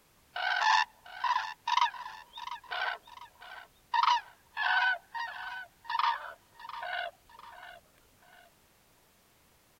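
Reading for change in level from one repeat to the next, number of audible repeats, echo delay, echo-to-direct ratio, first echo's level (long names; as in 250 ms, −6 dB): −8.5 dB, 2, 699 ms, −13.5 dB, −14.0 dB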